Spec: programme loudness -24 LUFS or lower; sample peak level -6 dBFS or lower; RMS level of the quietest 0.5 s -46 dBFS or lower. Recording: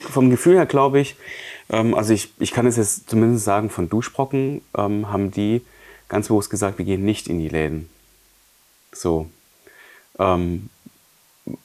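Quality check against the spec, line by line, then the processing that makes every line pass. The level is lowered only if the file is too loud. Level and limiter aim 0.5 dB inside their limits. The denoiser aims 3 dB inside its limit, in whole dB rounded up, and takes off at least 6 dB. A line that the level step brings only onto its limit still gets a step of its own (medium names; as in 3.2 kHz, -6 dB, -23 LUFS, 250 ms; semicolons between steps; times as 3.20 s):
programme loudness -20.0 LUFS: fail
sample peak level -4.0 dBFS: fail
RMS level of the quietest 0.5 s -57 dBFS: pass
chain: trim -4.5 dB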